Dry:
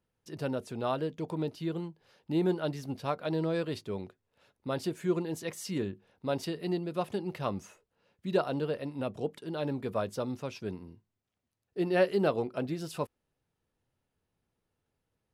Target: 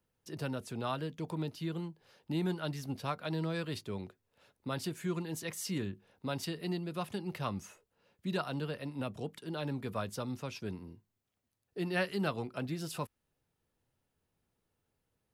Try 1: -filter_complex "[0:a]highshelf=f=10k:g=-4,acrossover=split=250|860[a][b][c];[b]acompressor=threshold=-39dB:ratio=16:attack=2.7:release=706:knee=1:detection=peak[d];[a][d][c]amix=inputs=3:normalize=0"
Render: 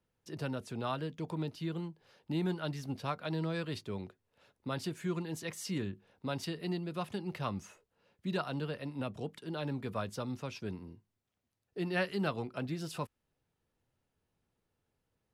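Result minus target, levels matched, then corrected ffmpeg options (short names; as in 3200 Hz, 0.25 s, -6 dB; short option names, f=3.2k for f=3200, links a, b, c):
8000 Hz band -3.0 dB
-filter_complex "[0:a]highshelf=f=10k:g=5.5,acrossover=split=250|860[a][b][c];[b]acompressor=threshold=-39dB:ratio=16:attack=2.7:release=706:knee=1:detection=peak[d];[a][d][c]amix=inputs=3:normalize=0"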